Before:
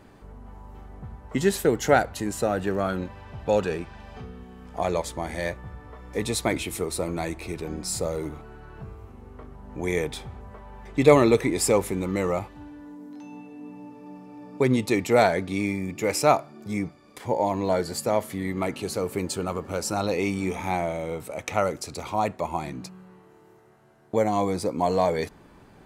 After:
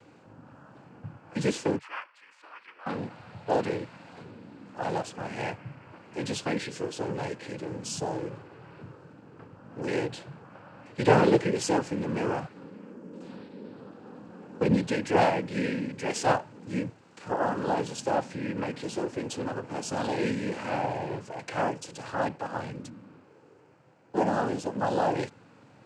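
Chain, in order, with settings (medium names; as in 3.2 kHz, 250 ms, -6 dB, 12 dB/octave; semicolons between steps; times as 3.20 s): 1.78–2.86 s: ladder band-pass 1.8 kHz, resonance 45%; noise-vocoded speech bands 8; harmonic-percussive split percussive -6 dB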